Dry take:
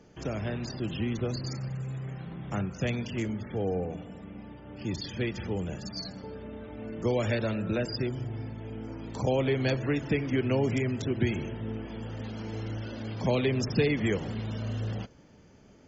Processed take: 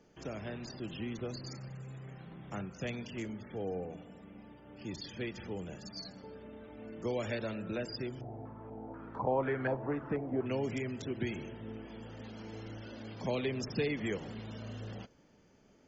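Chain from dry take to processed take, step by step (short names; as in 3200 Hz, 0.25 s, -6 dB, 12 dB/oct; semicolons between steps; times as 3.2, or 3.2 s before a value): bell 82 Hz -6.5 dB 1.9 oct; 8.21–10.46 stepped low-pass 4.1 Hz 730–1500 Hz; gain -6.5 dB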